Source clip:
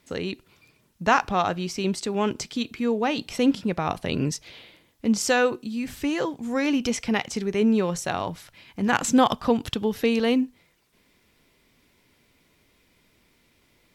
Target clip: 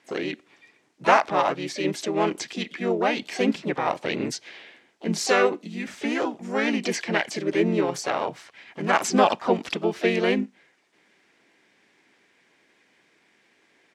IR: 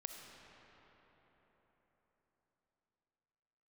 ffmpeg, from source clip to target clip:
-filter_complex "[0:a]highpass=300,equalizer=f=390:t=q:w=4:g=4,equalizer=f=840:t=q:w=4:g=4,equalizer=f=2200:t=q:w=4:g=6,equalizer=f=4300:t=q:w=4:g=-4,lowpass=f=8500:w=0.5412,lowpass=f=8500:w=1.3066,asplit=4[s0][s1][s2][s3];[s1]asetrate=35002,aresample=44100,atempo=1.25992,volume=0.891[s4];[s2]asetrate=58866,aresample=44100,atempo=0.749154,volume=0.158[s5];[s3]asetrate=66075,aresample=44100,atempo=0.66742,volume=0.2[s6];[s0][s4][s5][s6]amix=inputs=4:normalize=0,volume=0.794"

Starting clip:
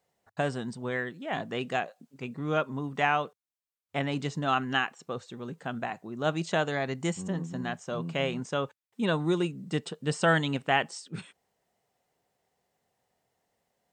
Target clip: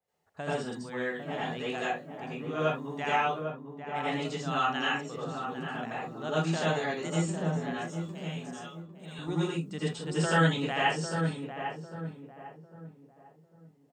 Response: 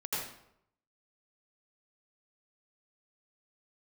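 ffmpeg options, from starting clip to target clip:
-filter_complex "[0:a]asettb=1/sr,asplit=3[s0][s1][s2];[s0]atrim=end=7.824[s3];[s1]atrim=start=7.82:end=9.19,asetpts=PTS-STARTPTS,afade=t=in:d=0.004:c=qsin,afade=t=out:st=1.366:d=0.004:c=qsin,aderivative[s4];[s2]atrim=start=9.186[s5];[s3][s4]acrossfade=d=0.004:c1=hsin:c2=qsin[s6];[s6][s5]acrossfade=d=0.004:c1=qsin:c2=hsin,asplit=2[s7][s8];[s8]adelay=800,lowpass=f=1100:p=1,volume=0.531,asplit=2[s9][s10];[s10]adelay=800,lowpass=f=1100:p=1,volume=0.38,asplit=2[s11][s12];[s12]adelay=800,lowpass=f=1100:p=1,volume=0.38,asplit=2[s13][s14];[s14]adelay=800,lowpass=f=1100:p=1,volume=0.38,asplit=2[s15][s16];[s16]adelay=800,lowpass=f=1100:p=1,volume=0.38[s17];[s7][s9][s11][s13][s15][s17]amix=inputs=6:normalize=0[s18];[1:a]atrim=start_sample=2205,afade=t=out:st=0.2:d=0.01,atrim=end_sample=9261[s19];[s18][s19]afir=irnorm=-1:irlink=0,adynamicequalizer=threshold=0.0126:dfrequency=3000:dqfactor=0.7:tfrequency=3000:tqfactor=0.7:attack=5:release=100:ratio=0.375:range=2.5:mode=boostabove:tftype=highshelf,volume=0.531"

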